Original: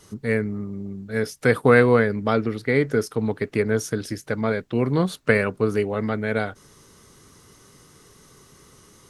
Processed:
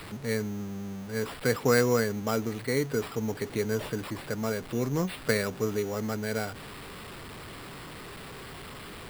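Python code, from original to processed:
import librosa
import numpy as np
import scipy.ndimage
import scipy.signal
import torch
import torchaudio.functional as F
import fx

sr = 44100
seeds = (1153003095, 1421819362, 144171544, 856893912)

y = x + 0.5 * 10.0 ** (-29.5 / 20.0) * np.sign(x)
y = fx.sample_hold(y, sr, seeds[0], rate_hz=6300.0, jitter_pct=0)
y = y * librosa.db_to_amplitude(-8.5)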